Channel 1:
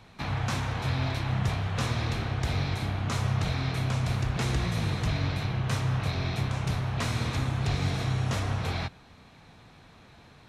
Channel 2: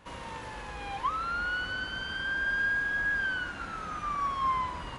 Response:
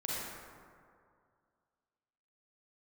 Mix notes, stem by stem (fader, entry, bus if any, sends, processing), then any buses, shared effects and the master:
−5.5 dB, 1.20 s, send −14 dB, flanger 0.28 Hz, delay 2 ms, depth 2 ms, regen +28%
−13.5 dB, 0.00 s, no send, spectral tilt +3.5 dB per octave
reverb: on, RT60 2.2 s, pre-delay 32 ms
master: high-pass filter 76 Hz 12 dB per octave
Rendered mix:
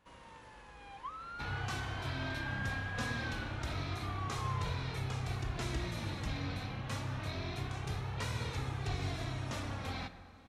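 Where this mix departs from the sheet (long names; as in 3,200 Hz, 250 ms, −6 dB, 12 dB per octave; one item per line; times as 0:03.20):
stem 2: missing spectral tilt +3.5 dB per octave
master: missing high-pass filter 76 Hz 12 dB per octave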